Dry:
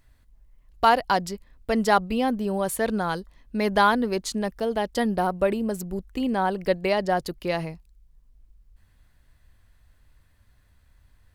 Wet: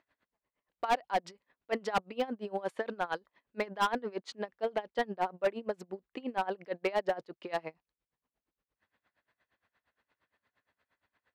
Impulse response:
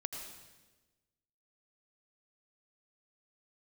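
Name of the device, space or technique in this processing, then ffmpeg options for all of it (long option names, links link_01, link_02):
helicopter radio: -filter_complex "[0:a]highpass=390,lowpass=2800,aeval=exprs='val(0)*pow(10,-23*(0.5-0.5*cos(2*PI*8.6*n/s))/20)':channel_layout=same,asoftclip=type=hard:threshold=-22.5dB,asettb=1/sr,asplit=3[link_01][link_02][link_03];[link_01]atrim=end=2.134[link_04];[link_02]atrim=start=2.13:end=2.75,asetpts=PTS-STARTPTS,afade=type=in:duration=0.004:curve=qsin,afade=type=out:start_time=0.616:duration=0.004:curve=qsin,highshelf=frequency=7900:gain=5.5[link_05];[link_03]atrim=start=2.746[link_06];[link_04][link_05]acrossfade=duration=0.004:curve1=hsin:curve2=qsin[link_07];[link_07][link_06]acrossfade=duration=0.004:curve1=qsin:curve2=hsin"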